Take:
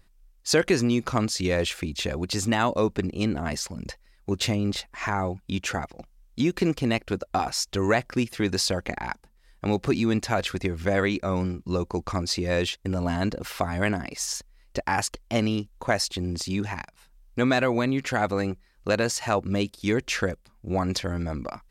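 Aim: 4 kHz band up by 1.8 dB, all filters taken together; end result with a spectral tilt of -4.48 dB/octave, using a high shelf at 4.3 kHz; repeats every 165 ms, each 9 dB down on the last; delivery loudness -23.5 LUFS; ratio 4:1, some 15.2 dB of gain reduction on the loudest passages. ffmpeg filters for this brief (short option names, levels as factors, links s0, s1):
-af "equalizer=f=4000:t=o:g=6.5,highshelf=f=4300:g=-7,acompressor=threshold=0.0158:ratio=4,aecho=1:1:165|330|495|660:0.355|0.124|0.0435|0.0152,volume=5.31"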